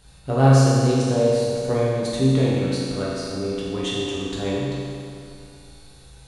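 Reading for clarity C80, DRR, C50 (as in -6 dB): -0.5 dB, -7.0 dB, -2.5 dB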